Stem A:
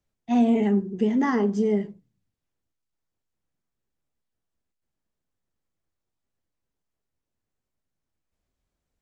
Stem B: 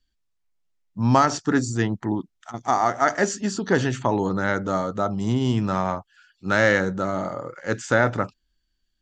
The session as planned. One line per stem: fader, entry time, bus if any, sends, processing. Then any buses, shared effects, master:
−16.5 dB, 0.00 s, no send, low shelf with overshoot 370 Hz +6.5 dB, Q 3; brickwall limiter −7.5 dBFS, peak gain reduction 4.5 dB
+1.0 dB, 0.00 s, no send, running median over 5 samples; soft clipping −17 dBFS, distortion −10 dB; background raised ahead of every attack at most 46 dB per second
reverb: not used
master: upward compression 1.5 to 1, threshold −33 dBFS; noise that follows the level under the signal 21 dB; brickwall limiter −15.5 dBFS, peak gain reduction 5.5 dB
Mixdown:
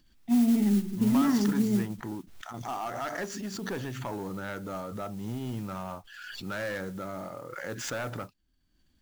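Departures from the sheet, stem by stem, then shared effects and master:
stem A −16.5 dB → −10.0 dB
stem B +1.0 dB → −11.0 dB

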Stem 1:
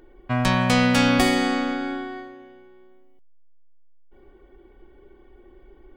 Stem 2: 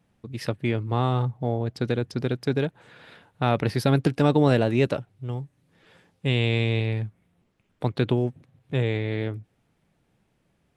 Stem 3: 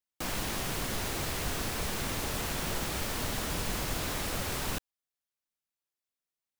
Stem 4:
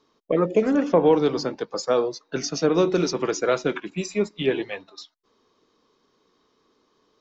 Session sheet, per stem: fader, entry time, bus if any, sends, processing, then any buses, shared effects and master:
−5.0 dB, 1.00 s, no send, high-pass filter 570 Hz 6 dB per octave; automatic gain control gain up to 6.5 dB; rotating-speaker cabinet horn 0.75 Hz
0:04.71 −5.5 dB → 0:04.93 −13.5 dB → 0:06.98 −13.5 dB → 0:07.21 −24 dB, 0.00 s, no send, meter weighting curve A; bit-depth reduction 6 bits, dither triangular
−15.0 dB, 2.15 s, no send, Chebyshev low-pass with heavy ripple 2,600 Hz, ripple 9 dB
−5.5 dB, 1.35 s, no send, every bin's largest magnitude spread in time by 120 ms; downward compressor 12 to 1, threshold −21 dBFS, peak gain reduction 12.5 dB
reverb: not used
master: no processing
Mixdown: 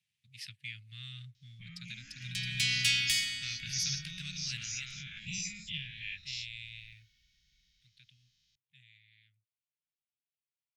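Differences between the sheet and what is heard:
stem 1: entry 1.00 s → 1.90 s
stem 2: missing bit-depth reduction 6 bits, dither triangular
master: extra inverse Chebyshev band-stop filter 330–970 Hz, stop band 60 dB

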